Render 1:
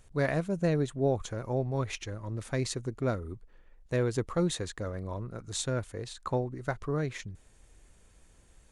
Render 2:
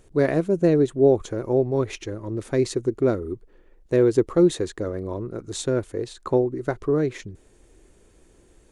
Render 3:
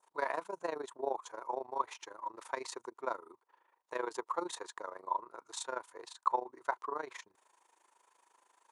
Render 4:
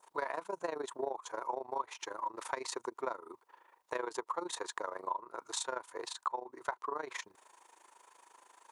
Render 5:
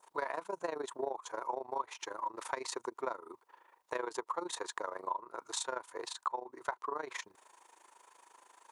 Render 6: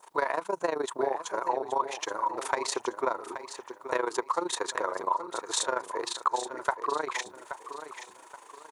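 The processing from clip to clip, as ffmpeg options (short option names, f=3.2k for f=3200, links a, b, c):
-af "equalizer=f=360:w=1.4:g=13.5,volume=2dB"
-af "adynamicequalizer=threshold=0.00631:dfrequency=2400:dqfactor=1:tfrequency=2400:tqfactor=1:attack=5:release=100:ratio=0.375:range=2:mode=cutabove:tftype=bell,highpass=f=960:t=q:w=7.9,tremolo=f=26:d=0.824,volume=-6dB"
-af "acompressor=threshold=-42dB:ratio=5,volume=8dB"
-af anull
-af "aecho=1:1:826|1652|2478:0.282|0.0902|0.0289,volume=8.5dB"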